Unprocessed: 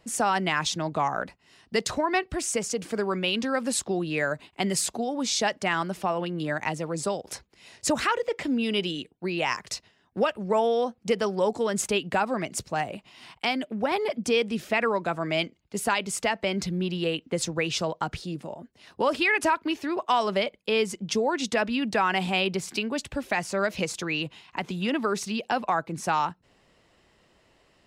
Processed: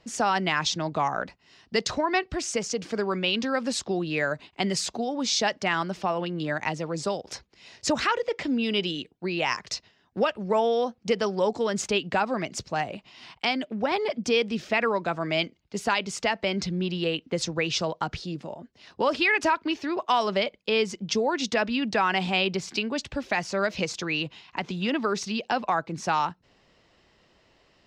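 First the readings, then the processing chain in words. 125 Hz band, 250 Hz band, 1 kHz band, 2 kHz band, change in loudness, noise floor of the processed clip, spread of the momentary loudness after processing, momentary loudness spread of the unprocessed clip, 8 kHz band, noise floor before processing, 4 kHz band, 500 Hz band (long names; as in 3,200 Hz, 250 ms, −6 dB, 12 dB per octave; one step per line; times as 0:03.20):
0.0 dB, 0.0 dB, 0.0 dB, +0.5 dB, +0.5 dB, −64 dBFS, 8 LU, 7 LU, −2.5 dB, −64 dBFS, +1.5 dB, 0.0 dB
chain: high shelf with overshoot 7,800 Hz −12.5 dB, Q 1.5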